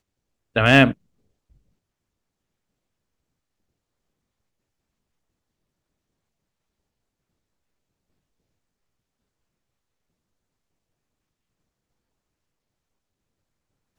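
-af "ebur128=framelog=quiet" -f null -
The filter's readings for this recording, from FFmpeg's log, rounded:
Integrated loudness:
  I:         -16.9 LUFS
  Threshold: -29.2 LUFS
Loudness range:
  LRA:         5.9 LU
  Threshold: -44.2 LUFS
  LRA low:   -29.1 LUFS
  LRA high:  -23.2 LUFS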